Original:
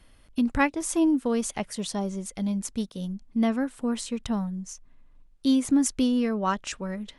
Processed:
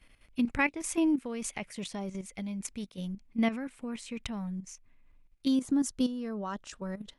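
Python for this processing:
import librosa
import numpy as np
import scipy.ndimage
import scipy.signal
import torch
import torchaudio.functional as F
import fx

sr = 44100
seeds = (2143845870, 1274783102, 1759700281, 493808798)

y = fx.peak_eq(x, sr, hz=2300.0, db=fx.steps((0.0, 11.0), (5.48, -5.5)), octaves=0.55)
y = fx.level_steps(y, sr, step_db=11)
y = y * librosa.db_to_amplitude(-2.5)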